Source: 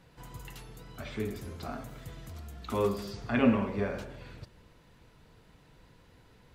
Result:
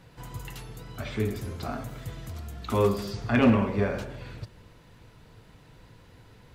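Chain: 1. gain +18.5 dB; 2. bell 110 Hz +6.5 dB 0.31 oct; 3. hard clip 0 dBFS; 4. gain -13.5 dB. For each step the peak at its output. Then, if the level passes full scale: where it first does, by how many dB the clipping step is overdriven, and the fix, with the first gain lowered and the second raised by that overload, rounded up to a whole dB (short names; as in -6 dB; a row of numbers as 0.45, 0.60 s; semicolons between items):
+7.0, +7.5, 0.0, -13.5 dBFS; step 1, 7.5 dB; step 1 +10.5 dB, step 4 -5.5 dB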